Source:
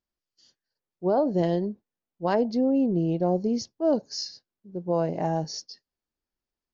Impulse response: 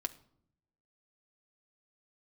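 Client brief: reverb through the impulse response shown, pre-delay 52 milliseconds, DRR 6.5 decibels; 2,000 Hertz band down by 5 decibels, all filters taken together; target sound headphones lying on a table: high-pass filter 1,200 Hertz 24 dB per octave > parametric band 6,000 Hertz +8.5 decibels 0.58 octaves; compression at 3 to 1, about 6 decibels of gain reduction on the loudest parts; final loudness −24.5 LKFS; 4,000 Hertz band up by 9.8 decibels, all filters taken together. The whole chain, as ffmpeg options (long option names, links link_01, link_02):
-filter_complex "[0:a]equalizer=frequency=2000:width_type=o:gain=-8.5,equalizer=frequency=4000:width_type=o:gain=8.5,acompressor=threshold=-27dB:ratio=3,asplit=2[link_01][link_02];[1:a]atrim=start_sample=2205,adelay=52[link_03];[link_02][link_03]afir=irnorm=-1:irlink=0,volume=-6.5dB[link_04];[link_01][link_04]amix=inputs=2:normalize=0,highpass=frequency=1200:width=0.5412,highpass=frequency=1200:width=1.3066,equalizer=frequency=6000:width_type=o:width=0.58:gain=8.5,volume=5dB"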